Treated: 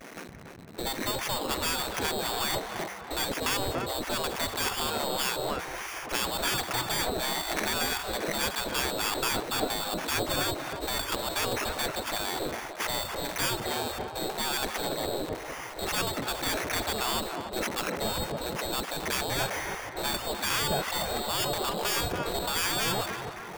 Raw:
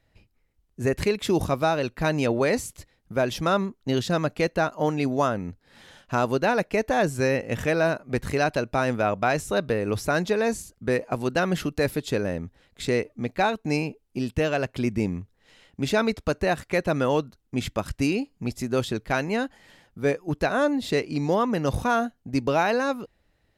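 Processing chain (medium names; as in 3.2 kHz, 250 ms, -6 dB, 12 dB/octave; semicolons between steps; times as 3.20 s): jump at every zero crossing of -37 dBFS; expander -37 dBFS; low-pass that closes with the level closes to 1.6 kHz, closed at -20 dBFS; bass shelf 250 Hz +10.5 dB; in parallel at +1.5 dB: compressor with a negative ratio -26 dBFS, ratio -1; on the sum: sample-and-hold 11×; saturation -14 dBFS, distortion -13 dB; on a send: tape echo 287 ms, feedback 77%, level -5.5 dB, low-pass 1.6 kHz; on the sum: spectral gate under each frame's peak -15 dB weak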